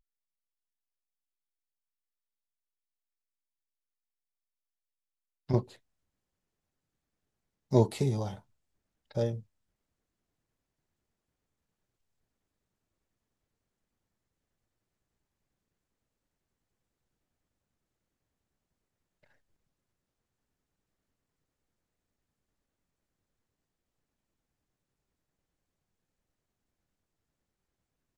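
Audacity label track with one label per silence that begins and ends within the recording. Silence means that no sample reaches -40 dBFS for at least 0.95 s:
5.630000	7.720000	silence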